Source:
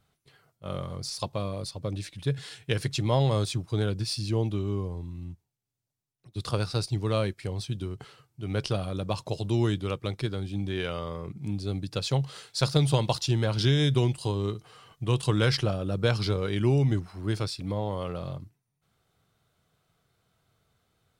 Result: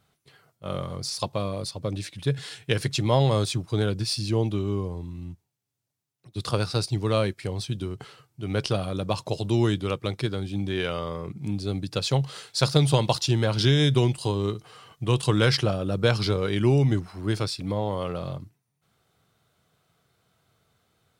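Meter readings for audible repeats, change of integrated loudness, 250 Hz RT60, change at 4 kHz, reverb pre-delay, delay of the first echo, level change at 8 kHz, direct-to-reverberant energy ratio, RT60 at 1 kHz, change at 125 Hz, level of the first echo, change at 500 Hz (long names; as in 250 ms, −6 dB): no echo audible, +3.0 dB, no reverb audible, +4.0 dB, no reverb audible, no echo audible, +4.0 dB, no reverb audible, no reverb audible, +2.0 dB, no echo audible, +4.0 dB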